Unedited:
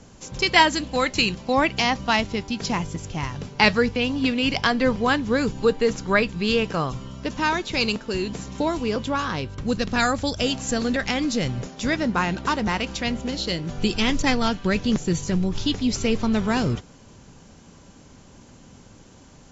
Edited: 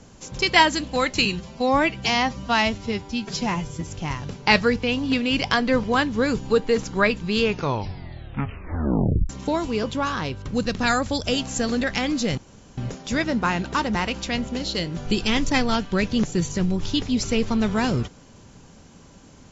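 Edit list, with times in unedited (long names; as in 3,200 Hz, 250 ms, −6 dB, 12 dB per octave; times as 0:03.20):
0:01.25–0:03.00: time-stretch 1.5×
0:06.53: tape stop 1.89 s
0:11.50: splice in room tone 0.40 s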